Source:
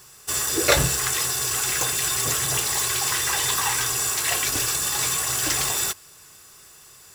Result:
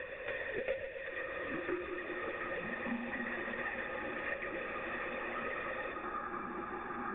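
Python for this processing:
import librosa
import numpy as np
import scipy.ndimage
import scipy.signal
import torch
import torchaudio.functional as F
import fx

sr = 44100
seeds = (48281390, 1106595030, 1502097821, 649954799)

y = fx.self_delay(x, sr, depth_ms=0.21)
y = scipy.signal.sosfilt(scipy.signal.butter(2, 160.0, 'highpass', fs=sr, output='sos'), y)
y = fx.lpc_monotone(y, sr, seeds[0], pitch_hz=240.0, order=16)
y = fx.formant_cascade(y, sr, vowel='e')
y = fx.high_shelf(y, sr, hz=2000.0, db=7.0)
y = fx.echo_feedback(y, sr, ms=124, feedback_pct=46, wet_db=-9.0)
y = fx.echo_pitch(y, sr, ms=667, semitones=-7, count=2, db_per_echo=-6.0)
y = fx.band_squash(y, sr, depth_pct=100)
y = y * 10.0 ** (1.0 / 20.0)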